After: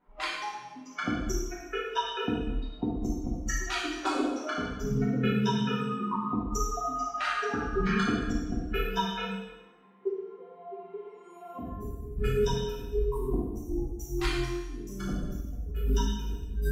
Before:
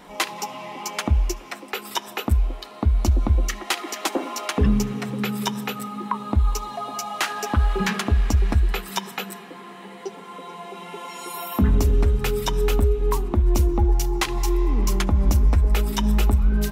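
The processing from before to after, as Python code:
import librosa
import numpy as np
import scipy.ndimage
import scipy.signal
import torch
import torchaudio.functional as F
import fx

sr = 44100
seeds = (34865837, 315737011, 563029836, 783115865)

y = fx.noise_reduce_blind(x, sr, reduce_db=23)
y = fx.env_lowpass(y, sr, base_hz=1900.0, full_db=-15.5)
y = fx.peak_eq(y, sr, hz=1400.0, db=4.0, octaves=0.72)
y = fx.over_compress(y, sr, threshold_db=-24.0, ratio=-0.5)
y = fx.low_shelf(y, sr, hz=420.0, db=5.5)
y = fx.comb_fb(y, sr, f0_hz=150.0, decay_s=0.79, harmonics='all', damping=0.0, mix_pct=70)
y = fx.rev_plate(y, sr, seeds[0], rt60_s=1.0, hf_ratio=1.0, predelay_ms=0, drr_db=-6.5)
y = y * 10.0 ** (-3.5 / 20.0)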